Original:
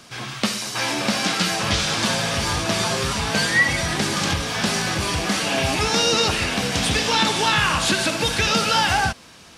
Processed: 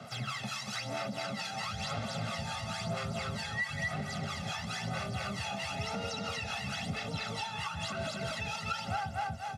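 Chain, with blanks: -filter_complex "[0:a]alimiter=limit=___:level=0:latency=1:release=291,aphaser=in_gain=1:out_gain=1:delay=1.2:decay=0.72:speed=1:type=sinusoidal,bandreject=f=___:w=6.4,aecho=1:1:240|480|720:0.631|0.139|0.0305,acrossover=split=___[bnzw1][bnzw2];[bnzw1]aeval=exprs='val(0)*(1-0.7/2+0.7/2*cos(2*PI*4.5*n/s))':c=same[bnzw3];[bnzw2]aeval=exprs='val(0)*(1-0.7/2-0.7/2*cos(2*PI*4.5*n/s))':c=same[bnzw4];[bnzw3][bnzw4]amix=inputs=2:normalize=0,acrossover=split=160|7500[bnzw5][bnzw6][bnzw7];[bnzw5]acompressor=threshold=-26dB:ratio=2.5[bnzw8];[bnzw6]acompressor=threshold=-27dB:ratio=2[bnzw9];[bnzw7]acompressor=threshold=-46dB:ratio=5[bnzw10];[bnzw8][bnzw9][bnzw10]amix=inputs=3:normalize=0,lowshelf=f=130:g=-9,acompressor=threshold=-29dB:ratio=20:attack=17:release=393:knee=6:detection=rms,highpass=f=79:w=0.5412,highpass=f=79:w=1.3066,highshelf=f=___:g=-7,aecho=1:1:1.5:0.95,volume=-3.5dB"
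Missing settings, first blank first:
-15.5dB, 490, 590, 3.4k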